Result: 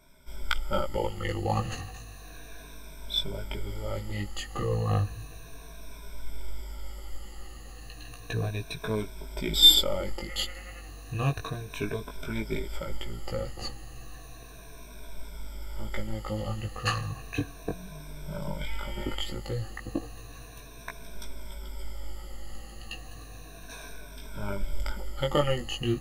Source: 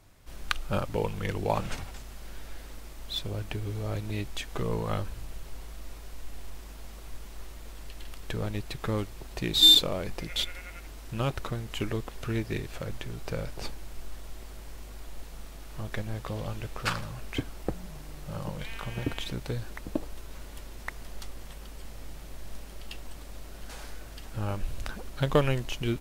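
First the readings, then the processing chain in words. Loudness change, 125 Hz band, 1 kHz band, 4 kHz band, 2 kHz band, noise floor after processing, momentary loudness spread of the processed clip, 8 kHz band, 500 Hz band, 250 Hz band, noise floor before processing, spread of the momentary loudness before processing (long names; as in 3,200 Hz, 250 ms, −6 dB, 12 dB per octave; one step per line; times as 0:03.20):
+0.5 dB, +0.5 dB, +1.0 dB, 0.0 dB, 0.0 dB, −46 dBFS, 17 LU, +2.0 dB, +0.5 dB, −0.5 dB, −44 dBFS, 16 LU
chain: rippled gain that drifts along the octave scale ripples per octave 1.6, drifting −0.33 Hz, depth 19 dB
chorus effect 0.14 Hz, delay 16 ms, depth 4.8 ms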